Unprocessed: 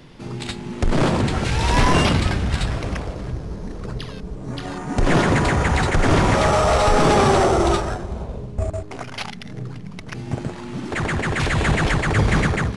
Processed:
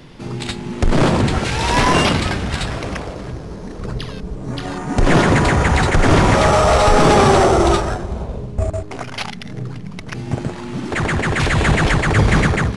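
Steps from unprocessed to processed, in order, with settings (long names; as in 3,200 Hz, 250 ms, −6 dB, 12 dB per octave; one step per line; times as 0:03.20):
0:01.39–0:03.79: low-shelf EQ 130 Hz −8.5 dB
level +4 dB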